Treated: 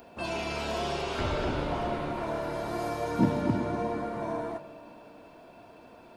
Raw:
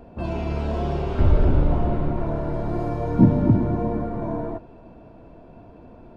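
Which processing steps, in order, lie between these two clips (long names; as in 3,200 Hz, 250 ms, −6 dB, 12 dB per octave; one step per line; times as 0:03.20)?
spectral tilt +4.5 dB per octave
convolution reverb RT60 3.6 s, pre-delay 10 ms, DRR 15 dB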